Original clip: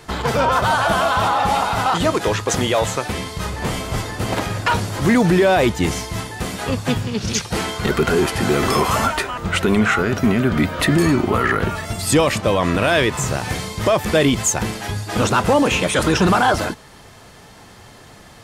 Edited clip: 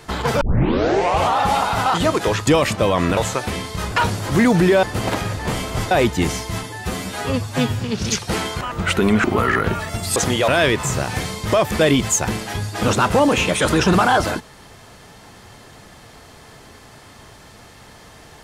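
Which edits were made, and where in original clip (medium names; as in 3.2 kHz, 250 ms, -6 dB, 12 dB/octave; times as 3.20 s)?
0.41 s: tape start 0.97 s
2.47–2.79 s: swap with 12.12–12.82 s
3.54–4.08 s: swap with 4.62–5.53 s
6.25–7.03 s: stretch 1.5×
7.84–9.27 s: delete
9.90–11.20 s: delete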